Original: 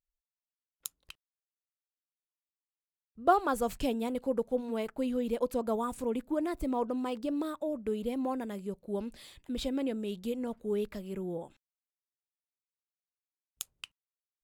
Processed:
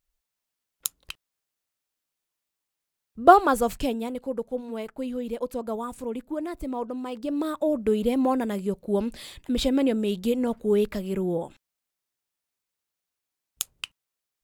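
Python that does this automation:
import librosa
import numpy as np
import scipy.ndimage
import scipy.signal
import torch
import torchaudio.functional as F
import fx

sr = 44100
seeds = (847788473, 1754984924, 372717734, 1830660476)

y = fx.gain(x, sr, db=fx.line((3.27, 11.0), (4.21, 0.5), (7.08, 0.5), (7.66, 10.0)))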